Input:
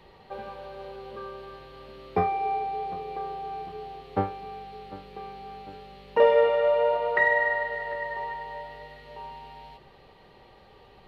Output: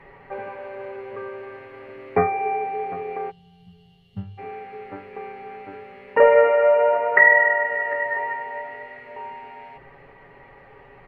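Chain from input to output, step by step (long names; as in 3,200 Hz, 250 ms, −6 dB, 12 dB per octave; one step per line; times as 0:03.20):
gain on a spectral selection 0:03.30–0:04.38, 230–2,700 Hz −29 dB
treble cut that deepens with the level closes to 2,700 Hz, closed at −22.5 dBFS
high shelf with overshoot 2,800 Hz −11.5 dB, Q 3
mains-hum notches 50/100/150 Hz
comb filter 7.2 ms, depth 56%
level +4 dB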